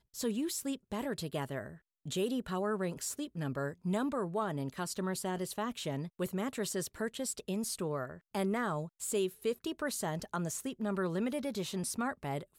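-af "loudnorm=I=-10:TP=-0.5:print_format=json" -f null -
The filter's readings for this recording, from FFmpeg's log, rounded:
"input_i" : "-36.3",
"input_tp" : "-22.6",
"input_lra" : "0.9",
"input_thresh" : "-46.4",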